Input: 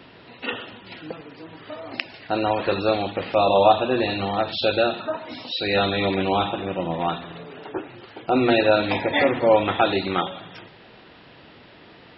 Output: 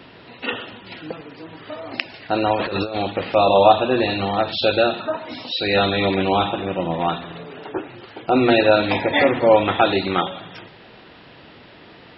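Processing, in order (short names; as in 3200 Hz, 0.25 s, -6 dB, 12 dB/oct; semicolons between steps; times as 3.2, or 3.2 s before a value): 2.56–2.98 negative-ratio compressor -28 dBFS, ratio -1; gain +3 dB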